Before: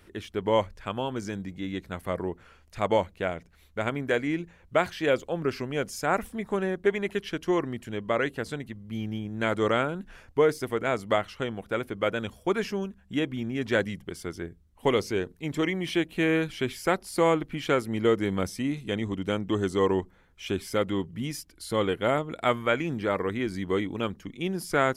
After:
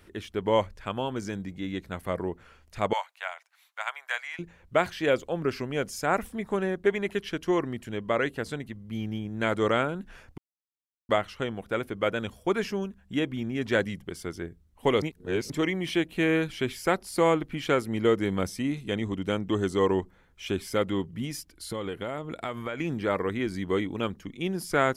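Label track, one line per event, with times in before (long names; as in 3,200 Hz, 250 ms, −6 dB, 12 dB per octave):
2.930000	4.390000	Butterworth high-pass 780 Hz
10.380000	11.090000	silence
15.020000	15.500000	reverse
21.240000	22.800000	downward compressor 10 to 1, threshold −28 dBFS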